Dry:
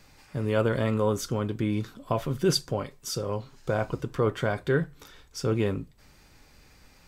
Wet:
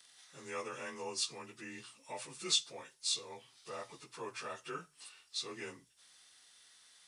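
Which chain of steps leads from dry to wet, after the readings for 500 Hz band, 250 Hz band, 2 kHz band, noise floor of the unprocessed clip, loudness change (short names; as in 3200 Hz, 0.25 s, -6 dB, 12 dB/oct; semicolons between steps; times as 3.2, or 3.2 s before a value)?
-19.0 dB, -23.0 dB, -11.0 dB, -57 dBFS, -11.0 dB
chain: inharmonic rescaling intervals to 90%; differentiator; notches 60/120 Hz; gain +6.5 dB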